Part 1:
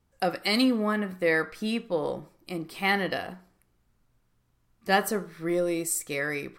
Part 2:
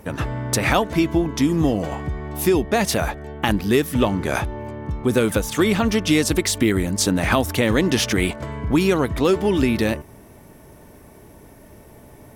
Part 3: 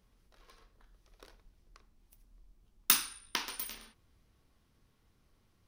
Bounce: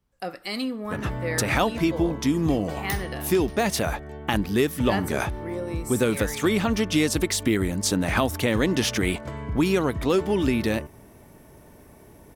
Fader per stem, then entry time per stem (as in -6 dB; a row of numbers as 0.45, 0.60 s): -6.0, -4.0, -9.5 dB; 0.00, 0.85, 0.00 s